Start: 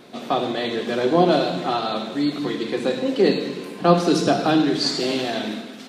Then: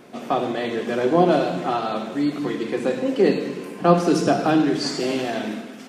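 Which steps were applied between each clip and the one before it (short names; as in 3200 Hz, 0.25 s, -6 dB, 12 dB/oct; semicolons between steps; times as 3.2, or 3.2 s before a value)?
bell 3900 Hz -10.5 dB 0.47 oct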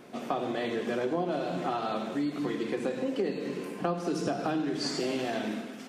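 compressor 6:1, threshold -23 dBFS, peak gain reduction 13.5 dB; gain -4 dB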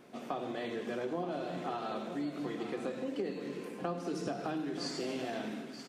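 echo 0.929 s -11.5 dB; gain -6.5 dB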